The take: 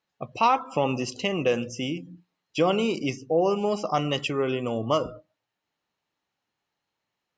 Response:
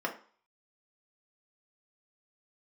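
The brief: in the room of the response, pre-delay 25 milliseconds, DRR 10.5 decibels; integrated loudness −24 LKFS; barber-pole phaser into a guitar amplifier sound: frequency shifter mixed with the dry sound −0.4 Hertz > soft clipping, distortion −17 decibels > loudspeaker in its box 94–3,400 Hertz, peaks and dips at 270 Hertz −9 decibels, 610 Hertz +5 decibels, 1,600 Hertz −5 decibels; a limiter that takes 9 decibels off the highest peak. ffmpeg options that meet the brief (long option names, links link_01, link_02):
-filter_complex "[0:a]alimiter=limit=-18.5dB:level=0:latency=1,asplit=2[link_01][link_02];[1:a]atrim=start_sample=2205,adelay=25[link_03];[link_02][link_03]afir=irnorm=-1:irlink=0,volume=-17.5dB[link_04];[link_01][link_04]amix=inputs=2:normalize=0,asplit=2[link_05][link_06];[link_06]afreqshift=-0.4[link_07];[link_05][link_07]amix=inputs=2:normalize=1,asoftclip=threshold=-25dB,highpass=94,equalizer=frequency=270:width_type=q:width=4:gain=-9,equalizer=frequency=610:width_type=q:width=4:gain=5,equalizer=frequency=1600:width_type=q:width=4:gain=-5,lowpass=frequency=3400:width=0.5412,lowpass=frequency=3400:width=1.3066,volume=11dB"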